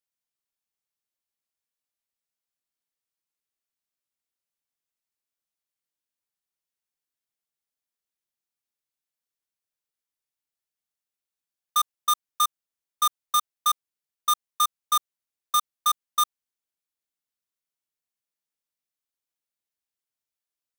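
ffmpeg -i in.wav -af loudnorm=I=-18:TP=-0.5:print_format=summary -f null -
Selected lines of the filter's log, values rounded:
Input Integrated:    -26.0 LUFS
Input True Peak:     -14.1 dBTP
Input LRA:             9.1 LU
Input Threshold:     -36.0 LUFS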